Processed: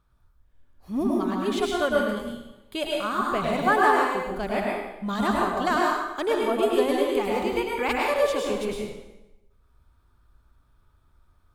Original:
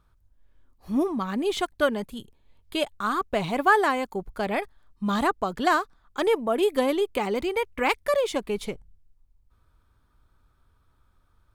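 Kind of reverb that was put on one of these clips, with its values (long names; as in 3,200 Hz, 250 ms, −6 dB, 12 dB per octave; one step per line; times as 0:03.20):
dense smooth reverb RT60 0.98 s, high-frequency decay 0.85×, pre-delay 90 ms, DRR −2.5 dB
level −3.5 dB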